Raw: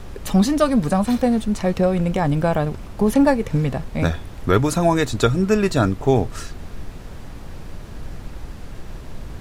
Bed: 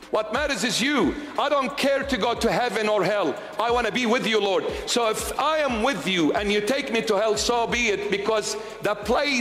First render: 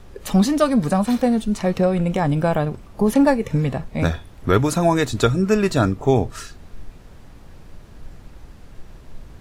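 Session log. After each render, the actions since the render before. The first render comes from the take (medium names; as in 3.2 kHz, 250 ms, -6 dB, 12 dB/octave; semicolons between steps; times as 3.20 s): noise print and reduce 8 dB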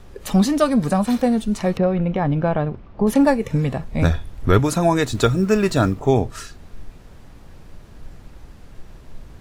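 1.77–3.07 s: distance through air 270 m; 3.88–4.60 s: bass shelf 74 Hz +12 dB; 5.10–6.00 s: companding laws mixed up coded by mu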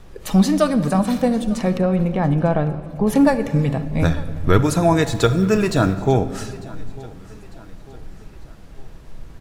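feedback delay 899 ms, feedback 46%, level -21 dB; simulated room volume 2400 m³, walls mixed, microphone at 0.62 m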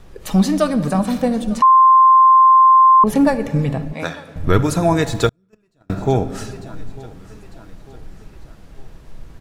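1.62–3.04 s: bleep 1.05 kHz -6 dBFS; 3.93–4.36 s: frequency weighting A; 5.29–5.90 s: gate -10 dBFS, range -44 dB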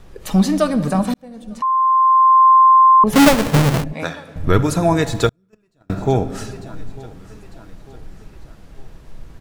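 1.14–2.48 s: fade in; 3.13–3.84 s: square wave that keeps the level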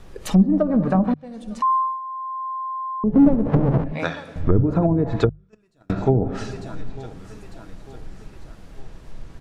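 hum notches 50/100/150 Hz; low-pass that closes with the level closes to 350 Hz, closed at -11 dBFS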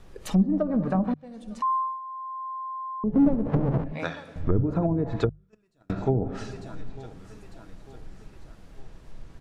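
trim -6 dB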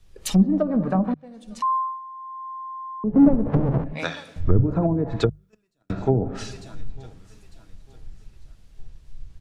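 in parallel at -1 dB: compression, threshold -31 dBFS, peak gain reduction 14.5 dB; on the sum: three bands expanded up and down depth 70%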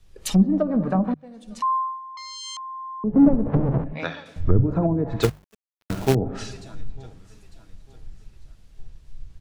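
2.17–2.57 s: self-modulated delay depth 0.87 ms; 3.14–4.26 s: distance through air 170 m; 5.22–6.15 s: companded quantiser 4-bit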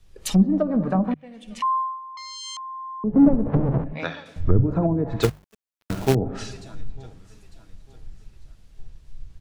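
1.11–2.13 s: high-order bell 2.5 kHz +10.5 dB 1 oct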